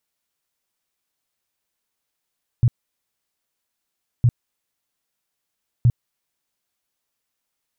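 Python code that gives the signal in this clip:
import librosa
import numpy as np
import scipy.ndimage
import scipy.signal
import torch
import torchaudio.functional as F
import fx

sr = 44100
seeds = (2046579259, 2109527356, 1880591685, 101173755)

y = fx.tone_burst(sr, hz=120.0, cycles=6, every_s=1.61, bursts=3, level_db=-10.5)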